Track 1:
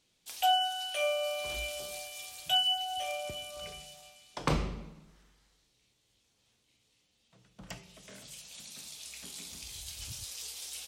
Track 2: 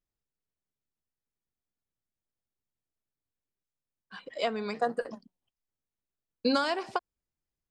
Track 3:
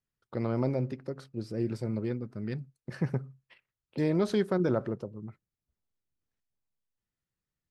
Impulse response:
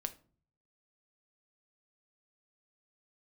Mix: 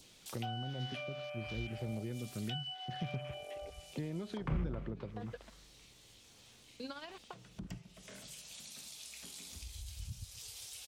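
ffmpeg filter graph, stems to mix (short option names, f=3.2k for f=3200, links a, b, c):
-filter_complex "[0:a]adynamicequalizer=threshold=0.00501:dfrequency=1700:dqfactor=0.98:tfrequency=1700:tqfactor=0.98:attack=5:release=100:ratio=0.375:range=3:mode=boostabove:tftype=bell,afwtdn=0.0126,acompressor=mode=upward:threshold=-34dB:ratio=2.5,volume=-2dB,asplit=2[a][b];[b]volume=-17dB[c];[1:a]aeval=exprs='val(0)*gte(abs(val(0)),0.0141)':c=same,tremolo=f=16:d=0.6,adelay=350,volume=-13dB[d];[2:a]volume=-1.5dB,asplit=2[e][f];[f]apad=whole_len=355386[g];[d][g]sidechaincompress=threshold=-42dB:ratio=8:attack=38:release=144[h];[h][e]amix=inputs=2:normalize=0,lowpass=f=3.4k:t=q:w=2.1,acompressor=threshold=-33dB:ratio=6,volume=0dB[i];[c]aecho=0:1:264|528|792|1056|1320|1584:1|0.41|0.168|0.0689|0.0283|0.0116[j];[a][i][j]amix=inputs=3:normalize=0,acrossover=split=200[k][l];[l]acompressor=threshold=-42dB:ratio=8[m];[k][m]amix=inputs=2:normalize=0"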